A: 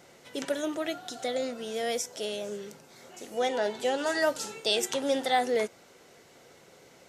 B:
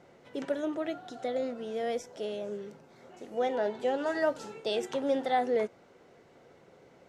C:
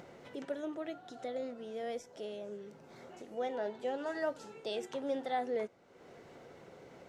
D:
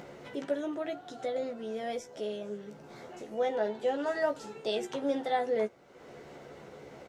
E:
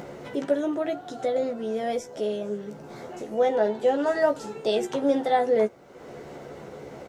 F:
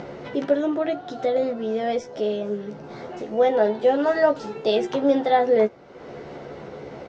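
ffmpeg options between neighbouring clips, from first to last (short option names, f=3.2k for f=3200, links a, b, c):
-af "lowpass=f=1.1k:p=1"
-af "acompressor=mode=upward:threshold=-36dB:ratio=2.5,volume=-7dB"
-filter_complex "[0:a]asplit=2[a][b];[b]adelay=14,volume=-5.5dB[c];[a][c]amix=inputs=2:normalize=0,volume=4.5dB"
-af "equalizer=f=2.9k:w=0.52:g=-4.5,volume=8.5dB"
-af "lowpass=f=5.4k:w=0.5412,lowpass=f=5.4k:w=1.3066,volume=3.5dB"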